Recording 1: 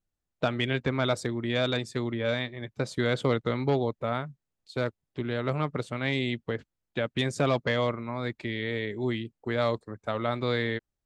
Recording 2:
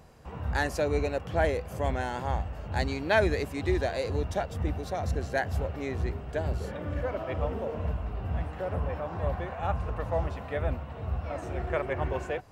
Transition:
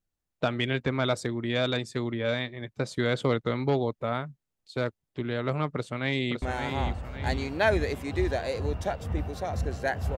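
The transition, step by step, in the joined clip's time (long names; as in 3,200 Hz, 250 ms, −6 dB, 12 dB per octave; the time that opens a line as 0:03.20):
recording 1
0:05.74–0:06.42: delay throw 560 ms, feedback 45%, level −6.5 dB
0:06.42: continue with recording 2 from 0:01.92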